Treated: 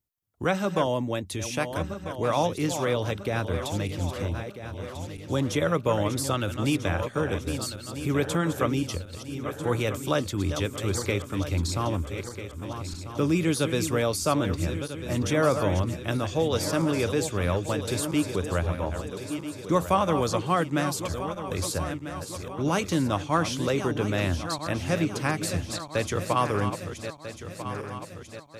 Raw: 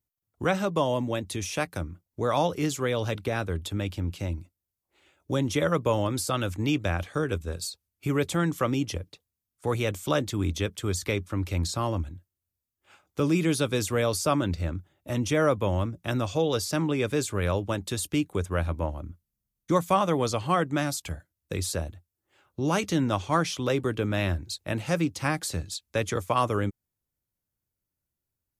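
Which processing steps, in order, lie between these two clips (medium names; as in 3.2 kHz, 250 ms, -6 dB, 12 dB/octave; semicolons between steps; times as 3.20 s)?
backward echo that repeats 647 ms, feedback 69%, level -9 dB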